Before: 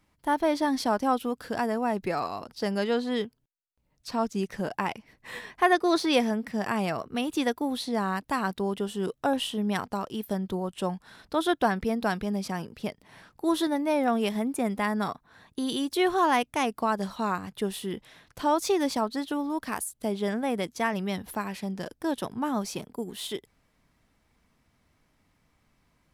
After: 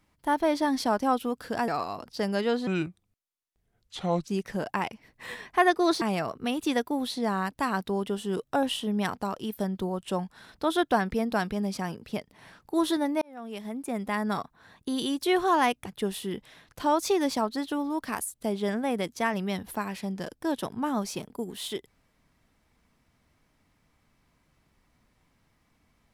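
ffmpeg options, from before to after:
ffmpeg -i in.wav -filter_complex "[0:a]asplit=7[link_01][link_02][link_03][link_04][link_05][link_06][link_07];[link_01]atrim=end=1.682[link_08];[link_02]atrim=start=2.108:end=3.104[link_09];[link_03]atrim=start=3.1:end=4.32,asetpts=PTS-STARTPTS,asetrate=33516,aresample=44100,atrim=end_sample=70792,asetpts=PTS-STARTPTS[link_10];[link_04]atrim=start=4.316:end=6.062[link_11];[link_05]atrim=start=6.718:end=13.92,asetpts=PTS-STARTPTS,afade=type=out:start_time=7.198:duration=0.004:curve=hsin[link_12];[link_06]atrim=start=13.92:end=16.562,asetpts=PTS-STARTPTS,afade=type=in:duration=1.14[link_13];[link_07]atrim=start=17.448[link_14];[link_08][link_09]acrossfade=duration=0.004:curve1=hsin:curve2=hsin[link_15];[link_15][link_10]acrossfade=duration=0.004:curve1=hsin:curve2=hsin[link_16];[link_16][link_11]acrossfade=duration=0.004:curve1=hsin:curve2=hsin[link_17];[link_12][link_13]concat=n=2:v=0:a=1[link_18];[link_17][link_18]acrossfade=duration=0.004:curve1=hsin:curve2=hsin[link_19];[link_19][link_14]acrossfade=duration=0.004:curve1=hsin:curve2=hsin" out.wav

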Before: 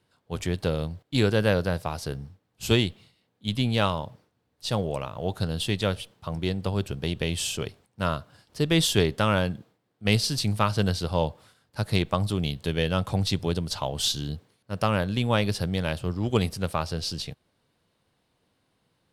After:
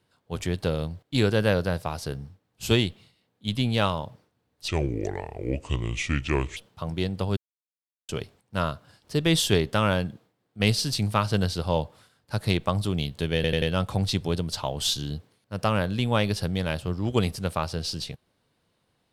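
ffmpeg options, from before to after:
ffmpeg -i in.wav -filter_complex "[0:a]asplit=8[link_01][link_02][link_03][link_04][link_05][link_06][link_07][link_08];[link_01]atrim=end=4.684[link_09];[link_02]atrim=start=4.68:end=6.02,asetpts=PTS-STARTPTS,asetrate=31311,aresample=44100[link_10];[link_03]atrim=start=6.016:end=6.82,asetpts=PTS-STARTPTS,afade=type=out:start_time=0.8:duration=0.004:curve=hsin[link_11];[link_04]atrim=start=6.82:end=7.54,asetpts=PTS-STARTPTS,volume=0[link_12];[link_05]atrim=start=7.54:end=12.892,asetpts=PTS-STARTPTS,afade=type=in:duration=0.004:curve=hsin[link_13];[link_06]atrim=start=12.798:end=12.892[link_14];[link_07]atrim=start=12.798:end=12.892[link_15];[link_08]atrim=start=12.798[link_16];[link_09][link_10]acrossfade=duration=0.004:curve1=hsin:curve2=hsin[link_17];[link_11][link_12][link_13]concat=n=3:v=0:a=1[link_18];[link_17][link_18]acrossfade=duration=0.004:curve1=hsin:curve2=hsin[link_19];[link_19][link_14]acrossfade=duration=0.004:curve1=hsin:curve2=hsin[link_20];[link_20][link_15]acrossfade=duration=0.004:curve1=hsin:curve2=hsin[link_21];[link_21][link_16]acrossfade=duration=0.004:curve1=hsin:curve2=hsin" out.wav

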